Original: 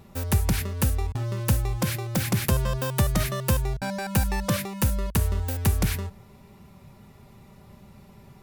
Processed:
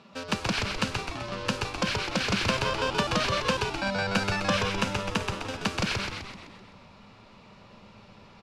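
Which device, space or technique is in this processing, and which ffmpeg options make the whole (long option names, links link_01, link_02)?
kitchen radio: -filter_complex "[0:a]highpass=190,equalizer=frequency=200:width_type=q:width=4:gain=5,equalizer=frequency=380:width_type=q:width=4:gain=-8,equalizer=frequency=800:width_type=q:width=4:gain=-7,equalizer=frequency=2000:width_type=q:width=4:gain=-9,equalizer=frequency=3600:width_type=q:width=4:gain=-6,lowpass=frequency=3900:width=0.5412,lowpass=frequency=3900:width=1.3066,aemphasis=mode=production:type=riaa,asettb=1/sr,asplit=3[link_01][link_02][link_03];[link_01]atrim=end=4.354[link_04];[link_02]atrim=start=4.35:end=5.64,asetpts=PTS-STARTPTS,afade=type=in:duration=0.004:curve=qsin,afade=type=out:start_time=1.286:duration=0.004:curve=qsin,bandreject=frequency=4400:width=9.6[link_05];[link_03]atrim=start=5.636[link_06];[link_04][link_05]acrossfade=duration=0.004:curve1=hsin:curve2=qsin[link_07];[link_07][link_06]acrossfade=duration=0.004:curve1=qsin:curve2=hsin,asplit=9[link_08][link_09][link_10][link_11][link_12][link_13][link_14][link_15][link_16];[link_09]adelay=128,afreqshift=-95,volume=-3.5dB[link_17];[link_10]adelay=256,afreqshift=-190,volume=-8.7dB[link_18];[link_11]adelay=384,afreqshift=-285,volume=-13.9dB[link_19];[link_12]adelay=512,afreqshift=-380,volume=-19.1dB[link_20];[link_13]adelay=640,afreqshift=-475,volume=-24.3dB[link_21];[link_14]adelay=768,afreqshift=-570,volume=-29.5dB[link_22];[link_15]adelay=896,afreqshift=-665,volume=-34.7dB[link_23];[link_16]adelay=1024,afreqshift=-760,volume=-39.8dB[link_24];[link_08][link_17][link_18][link_19][link_20][link_21][link_22][link_23][link_24]amix=inputs=9:normalize=0,volume=5dB"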